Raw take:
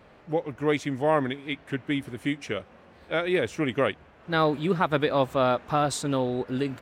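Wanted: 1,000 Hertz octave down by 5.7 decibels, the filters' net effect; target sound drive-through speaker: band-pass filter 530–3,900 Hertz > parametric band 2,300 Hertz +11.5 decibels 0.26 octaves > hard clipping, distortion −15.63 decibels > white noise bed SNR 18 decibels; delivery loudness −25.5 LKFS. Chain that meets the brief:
band-pass filter 530–3,900 Hz
parametric band 1,000 Hz −7.5 dB
parametric band 2,300 Hz +11.5 dB 0.26 octaves
hard clipping −20.5 dBFS
white noise bed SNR 18 dB
level +5.5 dB

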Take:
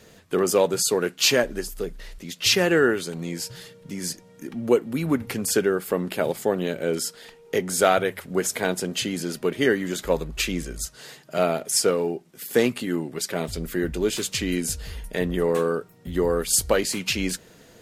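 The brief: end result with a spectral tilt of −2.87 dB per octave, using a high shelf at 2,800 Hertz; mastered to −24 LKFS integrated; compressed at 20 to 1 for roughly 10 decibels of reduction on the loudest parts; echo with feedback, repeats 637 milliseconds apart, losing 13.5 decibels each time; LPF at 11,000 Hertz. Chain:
low-pass filter 11,000 Hz
high-shelf EQ 2,800 Hz +6 dB
downward compressor 20 to 1, threshold −22 dBFS
repeating echo 637 ms, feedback 21%, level −13.5 dB
level +4 dB

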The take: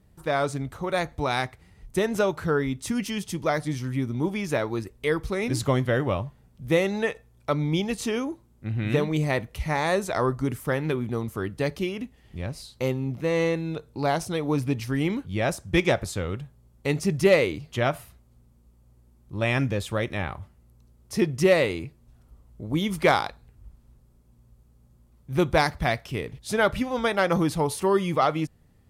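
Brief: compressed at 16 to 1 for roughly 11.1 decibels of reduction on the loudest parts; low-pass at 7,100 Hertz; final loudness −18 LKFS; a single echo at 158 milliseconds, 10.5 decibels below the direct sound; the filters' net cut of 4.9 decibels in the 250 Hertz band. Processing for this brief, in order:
low-pass filter 7,100 Hz
parametric band 250 Hz −7.5 dB
downward compressor 16 to 1, threshold −26 dBFS
single-tap delay 158 ms −10.5 dB
level +14.5 dB

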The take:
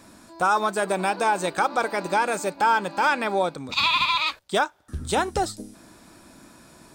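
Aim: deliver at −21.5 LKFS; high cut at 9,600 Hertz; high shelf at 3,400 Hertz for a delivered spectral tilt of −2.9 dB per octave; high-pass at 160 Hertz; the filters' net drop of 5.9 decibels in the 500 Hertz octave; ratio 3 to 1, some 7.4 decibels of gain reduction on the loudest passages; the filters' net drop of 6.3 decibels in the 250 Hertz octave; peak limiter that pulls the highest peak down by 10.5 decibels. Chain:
high-pass filter 160 Hz
low-pass filter 9,600 Hz
parametric band 250 Hz −5.5 dB
parametric band 500 Hz −6 dB
high-shelf EQ 3,400 Hz −5.5 dB
downward compressor 3 to 1, threshold −29 dBFS
level +15.5 dB
brickwall limiter −11 dBFS

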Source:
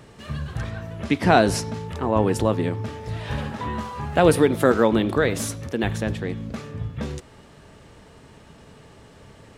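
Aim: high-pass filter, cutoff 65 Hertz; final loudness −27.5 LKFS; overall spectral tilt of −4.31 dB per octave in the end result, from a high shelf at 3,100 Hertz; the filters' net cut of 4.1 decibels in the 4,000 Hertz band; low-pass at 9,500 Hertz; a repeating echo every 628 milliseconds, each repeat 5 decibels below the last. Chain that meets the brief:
high-pass filter 65 Hz
low-pass filter 9,500 Hz
high-shelf EQ 3,100 Hz +3.5 dB
parametric band 4,000 Hz −8 dB
repeating echo 628 ms, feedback 56%, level −5 dB
level −5.5 dB

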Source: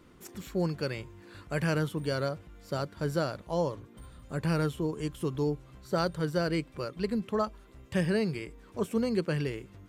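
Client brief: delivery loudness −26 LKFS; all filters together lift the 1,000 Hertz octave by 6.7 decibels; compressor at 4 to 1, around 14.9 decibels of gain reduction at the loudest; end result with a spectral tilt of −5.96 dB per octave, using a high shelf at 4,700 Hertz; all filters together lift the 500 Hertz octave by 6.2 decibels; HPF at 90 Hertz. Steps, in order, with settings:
high-pass filter 90 Hz
parametric band 500 Hz +5.5 dB
parametric band 1,000 Hz +7.5 dB
high-shelf EQ 4,700 Hz −3 dB
downward compressor 4 to 1, threshold −37 dBFS
level +14.5 dB

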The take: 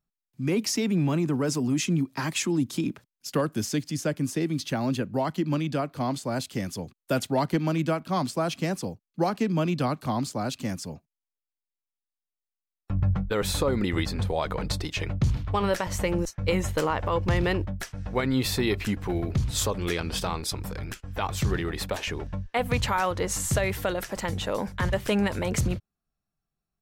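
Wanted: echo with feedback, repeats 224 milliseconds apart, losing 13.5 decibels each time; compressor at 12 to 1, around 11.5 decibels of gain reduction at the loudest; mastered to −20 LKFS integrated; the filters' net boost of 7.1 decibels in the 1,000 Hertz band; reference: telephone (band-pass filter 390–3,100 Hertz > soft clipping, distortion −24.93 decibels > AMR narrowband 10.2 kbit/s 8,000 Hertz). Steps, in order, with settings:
parametric band 1,000 Hz +9 dB
downward compressor 12 to 1, threshold −27 dBFS
band-pass filter 390–3,100 Hz
repeating echo 224 ms, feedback 21%, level −13.5 dB
soft clipping −19 dBFS
level +17 dB
AMR narrowband 10.2 kbit/s 8,000 Hz

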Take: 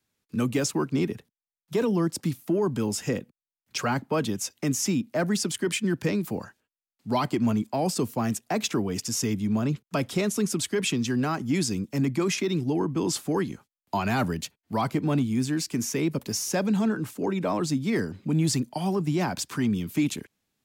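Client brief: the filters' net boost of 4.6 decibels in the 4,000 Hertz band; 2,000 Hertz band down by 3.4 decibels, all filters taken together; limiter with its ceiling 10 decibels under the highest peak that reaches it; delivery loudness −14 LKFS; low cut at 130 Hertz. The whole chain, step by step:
high-pass filter 130 Hz
parametric band 2,000 Hz −7 dB
parametric band 4,000 Hz +8 dB
level +16.5 dB
brickwall limiter −5 dBFS

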